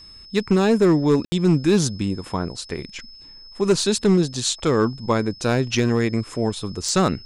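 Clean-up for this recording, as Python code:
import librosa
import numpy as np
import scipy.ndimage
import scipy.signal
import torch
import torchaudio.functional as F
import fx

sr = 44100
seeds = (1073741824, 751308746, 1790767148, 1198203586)

y = fx.fix_declip(x, sr, threshold_db=-10.0)
y = fx.notch(y, sr, hz=5200.0, q=30.0)
y = fx.fix_ambience(y, sr, seeds[0], print_start_s=3.06, print_end_s=3.56, start_s=1.25, end_s=1.32)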